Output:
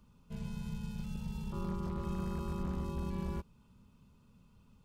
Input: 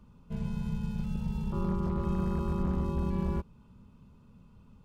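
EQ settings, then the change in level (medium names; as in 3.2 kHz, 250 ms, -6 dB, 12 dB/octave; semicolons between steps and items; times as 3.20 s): treble shelf 2.4 kHz +10 dB; -7.0 dB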